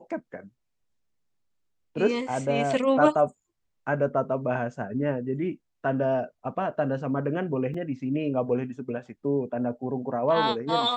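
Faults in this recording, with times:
0:07.74: drop-out 4.1 ms

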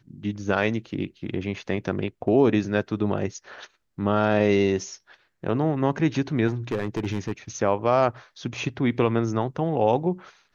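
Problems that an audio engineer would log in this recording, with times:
0:06.47–0:07.32: clipping −21 dBFS

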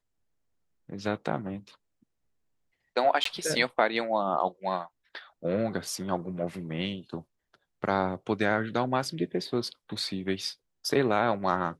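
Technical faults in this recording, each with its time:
0:03.24–0:03.25: drop-out 14 ms

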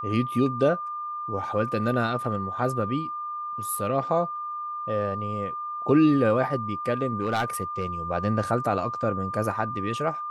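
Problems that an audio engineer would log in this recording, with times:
whistle 1,200 Hz −30 dBFS
0:07.21–0:07.85: clipping −19.5 dBFS

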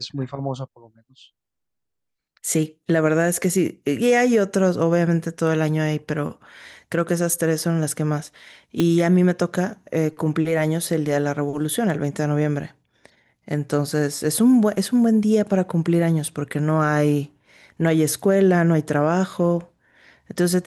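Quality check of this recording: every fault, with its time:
0:08.80: click −8 dBFS

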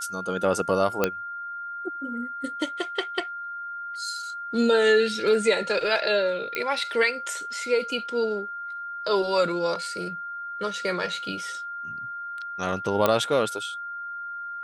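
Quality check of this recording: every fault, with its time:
whistle 1,400 Hz −32 dBFS
0:01.04: click −7 dBFS
0:06.55: click −14 dBFS
0:13.06: click −7 dBFS

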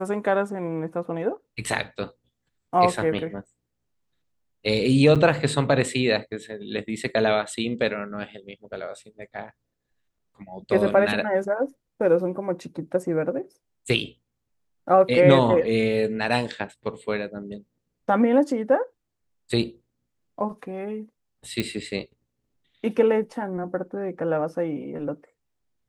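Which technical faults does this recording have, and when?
0:05.15–0:05.16: drop-out 6.9 ms
0:21.60: click −12 dBFS

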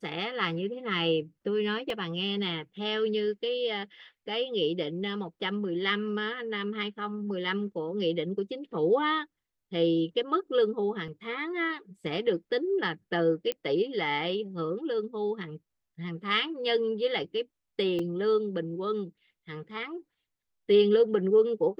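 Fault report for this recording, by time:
0:01.90: drop-out 2.4 ms
0:11.08: drop-out 3.8 ms
0:13.52: click −16 dBFS
0:17.99: drop-out 4 ms

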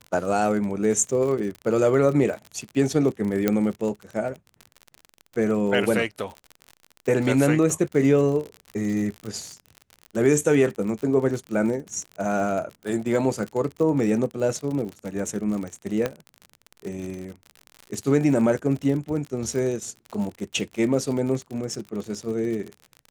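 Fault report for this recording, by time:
surface crackle 50 per second −30 dBFS
0:03.48: click −7 dBFS
0:16.06: click −11 dBFS

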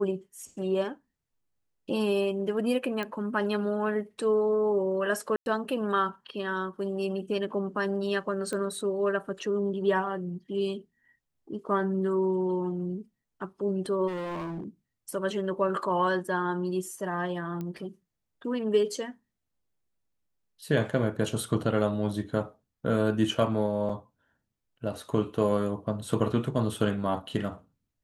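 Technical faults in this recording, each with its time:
0:03.03: click −20 dBFS
0:05.36–0:05.46: drop-out 101 ms
0:08.53: click −21 dBFS
0:14.07–0:14.64: clipping −32 dBFS
0:17.61: click −24 dBFS
0:23.89–0:23.90: drop-out 5.3 ms

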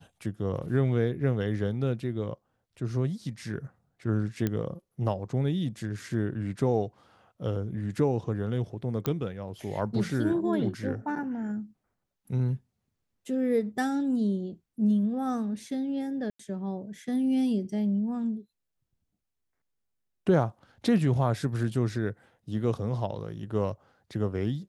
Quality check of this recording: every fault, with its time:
0:04.47: click −15 dBFS
0:09.06: click −14 dBFS
0:16.30–0:16.39: drop-out 94 ms

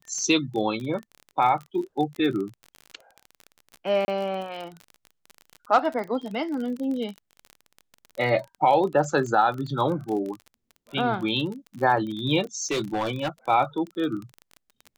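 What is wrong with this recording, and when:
surface crackle 30 per second −31 dBFS
0:04.05–0:04.08: drop-out 30 ms
0:12.57–0:13.29: clipping −22 dBFS

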